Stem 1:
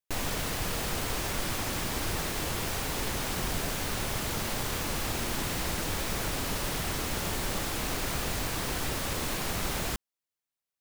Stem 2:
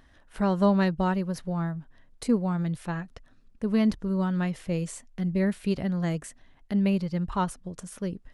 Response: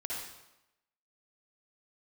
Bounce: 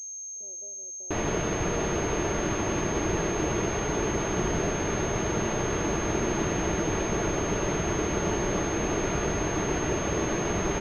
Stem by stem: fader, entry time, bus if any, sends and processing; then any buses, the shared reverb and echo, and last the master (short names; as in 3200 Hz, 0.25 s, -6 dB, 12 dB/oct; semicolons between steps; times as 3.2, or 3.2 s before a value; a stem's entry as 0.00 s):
+2.5 dB, 1.00 s, no send, bell 350 Hz +10 dB 1.9 oct; notch comb 260 Hz
-17.5 dB, 0.00 s, send -14.5 dB, steep low-pass 630 Hz 48 dB/oct; compressor 3:1, threshold -32 dBFS, peak gain reduction 11 dB; steep high-pass 310 Hz 36 dB/oct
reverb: on, RT60 0.90 s, pre-delay 50 ms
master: pulse-width modulation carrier 6400 Hz